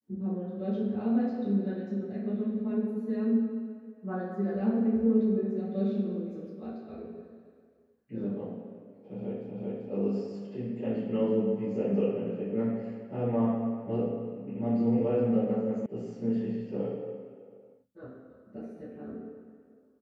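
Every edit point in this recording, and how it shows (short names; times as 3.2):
9.51 repeat of the last 0.39 s
15.86 sound cut off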